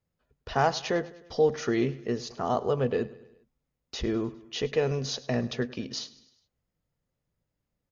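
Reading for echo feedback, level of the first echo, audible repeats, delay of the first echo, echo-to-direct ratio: 54%, -19.0 dB, 3, 0.102 s, -17.5 dB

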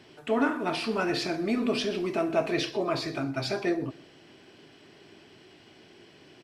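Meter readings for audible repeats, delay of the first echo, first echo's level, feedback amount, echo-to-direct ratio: 2, 0.129 s, -22.0 dB, 40%, -21.5 dB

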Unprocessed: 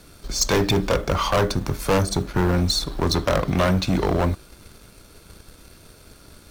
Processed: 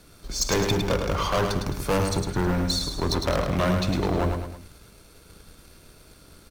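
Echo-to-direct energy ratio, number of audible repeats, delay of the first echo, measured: -4.5 dB, 3, 0.106 s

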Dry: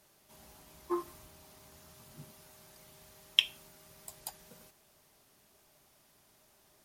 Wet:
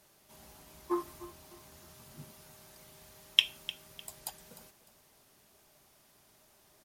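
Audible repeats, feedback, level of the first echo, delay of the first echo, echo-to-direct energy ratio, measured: 2, 30%, -16.0 dB, 0.302 s, -15.5 dB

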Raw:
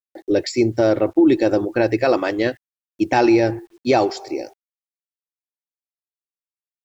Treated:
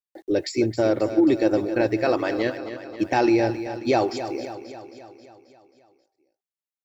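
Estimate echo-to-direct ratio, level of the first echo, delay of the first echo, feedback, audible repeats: -9.0 dB, -11.0 dB, 0.268 s, 59%, 6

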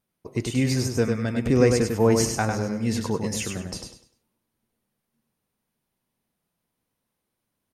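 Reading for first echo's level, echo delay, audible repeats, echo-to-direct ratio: -5.0 dB, 0.1 s, 3, -4.5 dB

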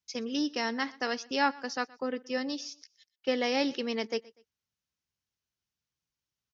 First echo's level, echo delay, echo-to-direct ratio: -22.5 dB, 0.122 s, -22.0 dB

